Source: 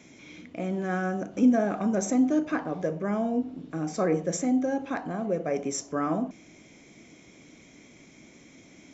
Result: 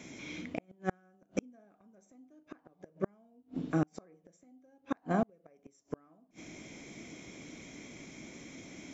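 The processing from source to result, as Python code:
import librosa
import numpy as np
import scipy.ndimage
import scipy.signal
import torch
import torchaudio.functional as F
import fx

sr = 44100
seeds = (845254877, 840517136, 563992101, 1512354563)

y = fx.gate_flip(x, sr, shuts_db=-22.0, range_db=-39)
y = y * 10.0 ** (3.5 / 20.0)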